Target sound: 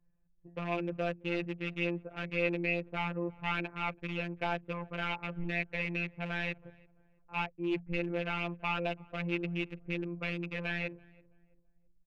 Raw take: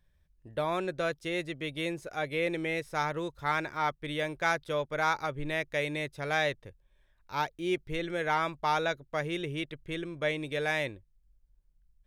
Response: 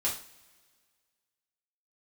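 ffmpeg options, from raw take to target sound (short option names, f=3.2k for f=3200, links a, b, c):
-filter_complex "[0:a]equalizer=f=150:w=1.5:g=5,bandreject=f=60:t=h:w=6,bandreject=f=120:t=h:w=6,bandreject=f=180:t=h:w=6,acrossover=split=340|1200[a][b][c];[c]acrusher=bits=3:dc=4:mix=0:aa=0.000001[d];[a][b][d]amix=inputs=3:normalize=0,asoftclip=type=tanh:threshold=-24dB,lowpass=f=2.6k:t=q:w=9.6,asplit=2[e][f];[f]adelay=332,lowpass=f=960:p=1,volume=-23dB,asplit=2[g][h];[h]adelay=332,lowpass=f=960:p=1,volume=0.4,asplit=2[i][j];[j]adelay=332,lowpass=f=960:p=1,volume=0.4[k];[g][i][k]amix=inputs=3:normalize=0[l];[e][l]amix=inputs=2:normalize=0,afftfilt=real='hypot(re,im)*cos(PI*b)':imag='0':win_size=1024:overlap=0.75,adynamicequalizer=threshold=0.00708:dfrequency=2000:dqfactor=0.7:tfrequency=2000:tqfactor=0.7:attack=5:release=100:ratio=0.375:range=2:mode=cutabove:tftype=highshelf"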